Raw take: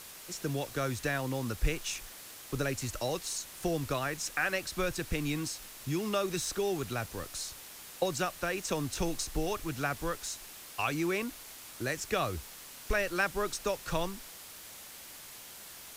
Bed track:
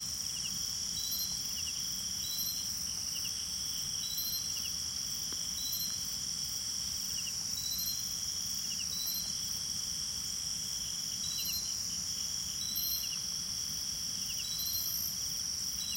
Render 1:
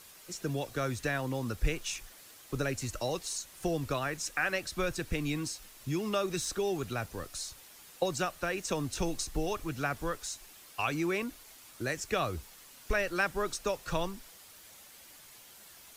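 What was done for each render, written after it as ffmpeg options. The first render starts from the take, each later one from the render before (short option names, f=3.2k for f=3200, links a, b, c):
-af "afftdn=nr=7:nf=-49"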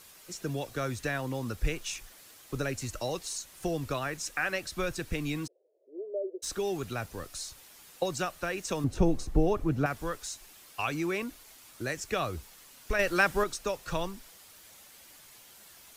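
-filter_complex "[0:a]asplit=3[a][b][c];[a]afade=t=out:st=5.46:d=0.02[d];[b]asuperpass=centerf=480:order=8:qfactor=1.9,afade=t=in:st=5.46:d=0.02,afade=t=out:st=6.42:d=0.02[e];[c]afade=t=in:st=6.42:d=0.02[f];[d][e][f]amix=inputs=3:normalize=0,asettb=1/sr,asplit=3[g][h][i];[g]atrim=end=8.844[j];[h]atrim=start=8.84:end=9.86,asetpts=PTS-STARTPTS,afade=t=in:d=0.004:c=qsin,afade=t=out:st=1.016:d=0.004:c=qsin,tiltshelf=f=1.3k:g=9.5[k];[i]atrim=start=9.856[l];[j][k]acrossfade=d=0.004:c1=hsin:c2=qsin[m];[m][l]acrossfade=d=0.004:c1=qsin:c2=hsin,asettb=1/sr,asplit=3[n][o][p];[n]atrim=end=12.994[q];[o]atrim=start=12.99:end=13.44,asetpts=PTS-STARTPTS,afade=t=in:d=0.004:c=qsin,afade=t=out:st=0.446:d=0.004:c=qsin,acontrast=31[r];[p]atrim=start=13.436[s];[q][r]acrossfade=d=0.004:c1=hsin:c2=qsin[t];[t][s]acrossfade=d=0.004:c1=qsin:c2=hsin"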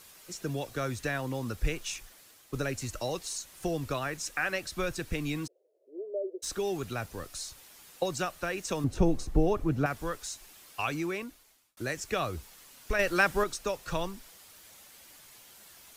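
-filter_complex "[0:a]asplit=3[a][b][c];[a]atrim=end=2.53,asetpts=PTS-STARTPTS,afade=t=out:st=1.91:d=0.62:silence=0.501187[d];[b]atrim=start=2.53:end=11.77,asetpts=PTS-STARTPTS,afade=t=in:d=0.004:c=hsin:silence=0.501187,afade=t=out:st=8.38:d=0.86[e];[c]atrim=start=11.77,asetpts=PTS-STARTPTS,afade=t=in:d=0.004:c=hsin[f];[d][e][f]concat=n=3:v=0:a=1"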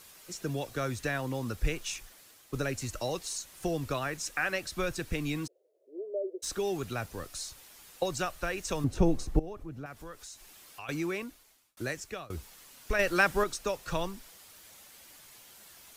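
-filter_complex "[0:a]asettb=1/sr,asplit=3[a][b][c];[a]atrim=end=7.524[d];[b]atrim=start=7.52:end=8.84,asetpts=PTS-STARTPTS,afade=t=in:d=0.004:c=qsin,afade=t=out:st=1.316:d=0.004:c=qsin,asubboost=boost=8:cutoff=97[e];[c]atrim=start=8.836[f];[d][e]acrossfade=d=0.004:c1=hsin:c2=qsin[g];[g][f]acrossfade=d=0.004:c1=qsin:c2=hsin,asettb=1/sr,asplit=3[h][i][j];[h]atrim=end=9.394[k];[i]atrim=start=9.39:end=10.89,asetpts=PTS-STARTPTS,afade=t=in:d=0.004:c=qsin,afade=t=out:st=1.496:d=0.004:c=qsin,acompressor=threshold=-49dB:ratio=2:attack=3.2:release=140:knee=1:detection=peak[l];[j]atrim=start=10.886[m];[k][l]acrossfade=d=0.004:c1=hsin:c2=qsin[n];[n][m]acrossfade=d=0.004:c1=qsin:c2=hsin,asplit=2[o][p];[o]atrim=end=12.3,asetpts=PTS-STARTPTS,afade=t=out:st=11.83:d=0.47:silence=0.0707946[q];[p]atrim=start=12.3,asetpts=PTS-STARTPTS,afade=t=in:d=0.004:c=hsin:silence=0.0707946[r];[q][r]concat=n=2:v=0:a=1"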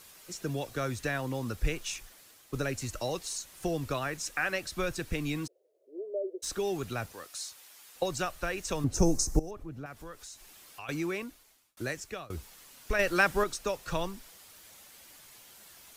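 -filter_complex "[0:a]asettb=1/sr,asplit=3[a][b][c];[a]atrim=end=7.124[d];[b]atrim=start=7.12:end=7.96,asetpts=PTS-STARTPTS,afade=t=in:d=0.004:c=qsin,afade=t=out:st=0.836:d=0.004:c=qsin,highpass=f=760:p=1[e];[c]atrim=start=7.956[f];[d][e]acrossfade=d=0.004:c1=hsin:c2=qsin[g];[g][f]acrossfade=d=0.004:c1=qsin:c2=hsin,asettb=1/sr,asplit=3[h][i][j];[h]atrim=end=8.944[k];[i]atrim=start=8.94:end=9.51,asetpts=PTS-STARTPTS,afade=t=in:d=0.004:c=qsin,afade=t=out:st=0.566:d=0.004:c=qsin,highshelf=f=4.5k:t=q:w=3:g=10.5[l];[j]atrim=start=9.506[m];[k][l]acrossfade=d=0.004:c1=hsin:c2=qsin[n];[n][m]acrossfade=d=0.004:c1=qsin:c2=hsin"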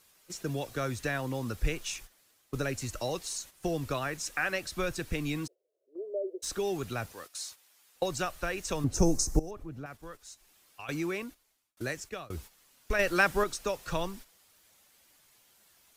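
-af "agate=range=-10dB:threshold=-46dB:ratio=16:detection=peak"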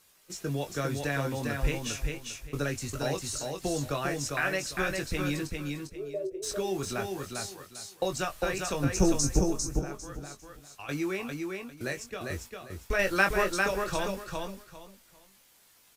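-filter_complex "[0:a]asplit=2[a][b];[b]adelay=21,volume=-6.5dB[c];[a][c]amix=inputs=2:normalize=0,asplit=2[d][e];[e]aecho=0:1:400|800|1200:0.631|0.145|0.0334[f];[d][f]amix=inputs=2:normalize=0"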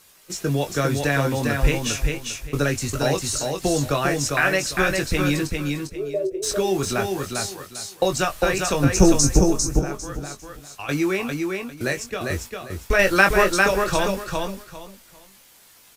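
-af "volume=9.5dB,alimiter=limit=-2dB:level=0:latency=1"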